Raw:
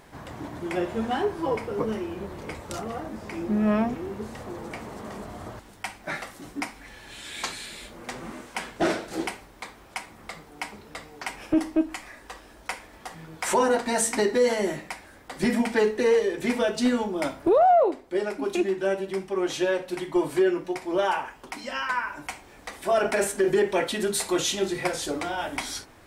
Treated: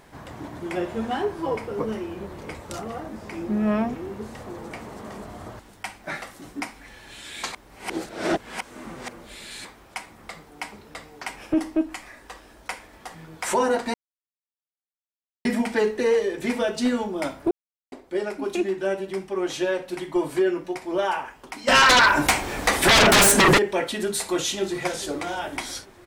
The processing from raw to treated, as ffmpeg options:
-filter_complex "[0:a]asplit=3[a][b][c];[a]afade=t=out:st=21.67:d=0.02[d];[b]aeval=exprs='0.266*sin(PI/2*6.31*val(0)/0.266)':c=same,afade=t=in:st=21.67:d=0.02,afade=t=out:st=23.57:d=0.02[e];[c]afade=t=in:st=23.57:d=0.02[f];[d][e][f]amix=inputs=3:normalize=0,asplit=2[g][h];[h]afade=t=in:st=24.25:d=0.01,afade=t=out:st=24.97:d=0.01,aecho=0:1:420|840|1260|1680|2100:0.16788|0.0839402|0.0419701|0.0209851|0.0104925[i];[g][i]amix=inputs=2:normalize=0,asplit=7[j][k][l][m][n][o][p];[j]atrim=end=7.522[q];[k]atrim=start=7.518:end=9.652,asetpts=PTS-STARTPTS,areverse[r];[l]atrim=start=9.648:end=13.94,asetpts=PTS-STARTPTS,afade=t=out:st=4.288:d=0.004:c=hsin[s];[m]atrim=start=13.94:end=15.45,asetpts=PTS-STARTPTS,volume=0[t];[n]atrim=start=15.45:end=17.51,asetpts=PTS-STARTPTS,afade=t=in:d=0.004:c=hsin,afade=t=out:st=2.056:d=0.004:c=hsin[u];[o]atrim=start=17.51:end=17.92,asetpts=PTS-STARTPTS,volume=0[v];[p]atrim=start=17.92,asetpts=PTS-STARTPTS,afade=t=in:d=0.004:c=hsin[w];[q][r]acrossfade=d=0.004:c1=hsin:c2=hsin[x];[s][t][u][v][w]concat=n=5:v=0:a=1[y];[x][y]acrossfade=d=0.004:c1=hsin:c2=hsin"

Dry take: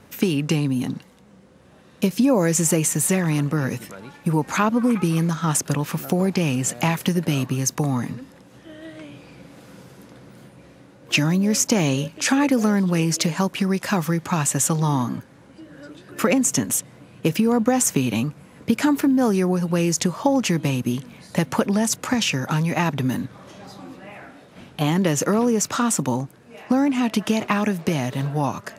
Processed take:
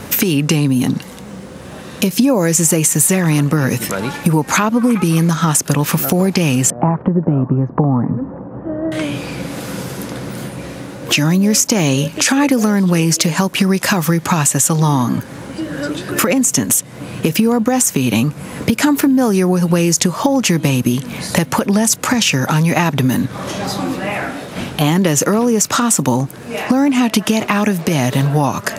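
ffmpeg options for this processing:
-filter_complex "[0:a]asettb=1/sr,asplit=3[a][b][c];[a]atrim=end=6.704[d];[b]atrim=start=6.7:end=8.92,asetpts=PTS-STARTPTS,afade=t=in:d=0.004:c=qsin,afade=t=out:st=2.216:d=0.004:c=qsin,lowpass=f=1.1k:w=0.5412,lowpass=f=1.1k:w=1.3066[e];[c]atrim=start=8.916[f];[d][e]acrossfade=d=0.004:c1=hsin:c2=qsin[g];[g][f]acrossfade=d=0.004:c1=qsin:c2=hsin,highshelf=f=6.6k:g=6,acompressor=threshold=-32dB:ratio=4,alimiter=level_in=20dB:limit=-1dB:release=50:level=0:latency=1,volume=-1dB"

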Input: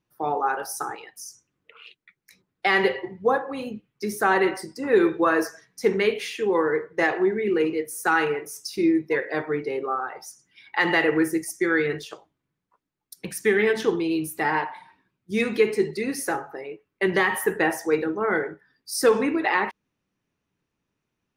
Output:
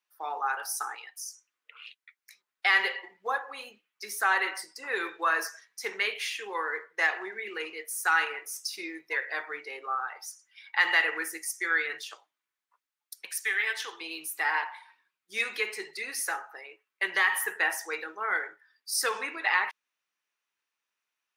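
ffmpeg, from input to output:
-filter_complex "[0:a]asettb=1/sr,asplit=3[a][b][c];[a]atrim=end=13.254[d];[b]atrim=start=13.25:end=14.01,asetpts=PTS-STARTPTS,afade=t=in:d=0.004:c=qsin,afade=t=out:st=0.756:d=0.004:c=qsin,highpass=f=1k:p=1[e];[c]atrim=start=14.006[f];[d][e]acrossfade=d=0.004:c1=hsin:c2=qsin[g];[g][f]acrossfade=d=0.004:c1=qsin:c2=hsin,highpass=1.2k"

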